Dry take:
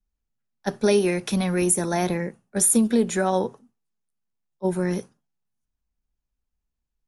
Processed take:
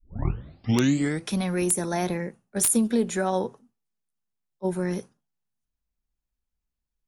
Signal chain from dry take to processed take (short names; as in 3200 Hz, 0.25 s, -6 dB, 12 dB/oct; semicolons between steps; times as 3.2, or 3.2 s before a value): tape start at the beginning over 1.31 s; wrapped overs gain 8.5 dB; gain -3 dB